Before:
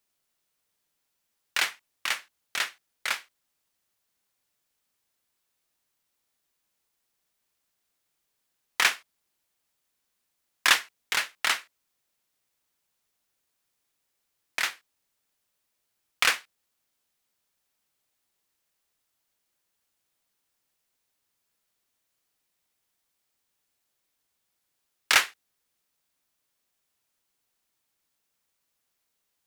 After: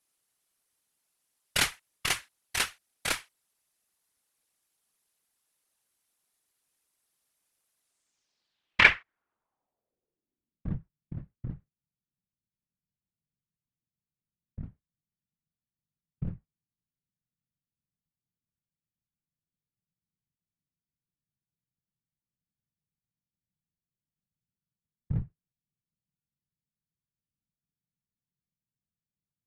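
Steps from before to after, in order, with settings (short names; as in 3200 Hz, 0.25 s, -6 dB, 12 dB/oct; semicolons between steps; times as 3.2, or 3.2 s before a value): added harmonics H 6 -13 dB, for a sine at -4.5 dBFS; whisperiser; low-pass sweep 11000 Hz -> 160 Hz, 7.8–10.78; gain -2 dB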